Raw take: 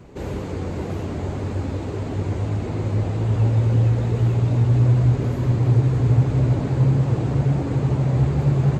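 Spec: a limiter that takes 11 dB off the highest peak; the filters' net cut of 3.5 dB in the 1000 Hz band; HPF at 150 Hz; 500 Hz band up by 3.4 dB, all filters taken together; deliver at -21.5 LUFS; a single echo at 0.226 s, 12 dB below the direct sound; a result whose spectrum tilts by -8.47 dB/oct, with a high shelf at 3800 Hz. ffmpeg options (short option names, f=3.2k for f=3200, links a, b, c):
-af "highpass=150,equalizer=f=500:t=o:g=6,equalizer=f=1k:t=o:g=-8,highshelf=f=3.8k:g=6.5,alimiter=limit=-21.5dB:level=0:latency=1,aecho=1:1:226:0.251,volume=8dB"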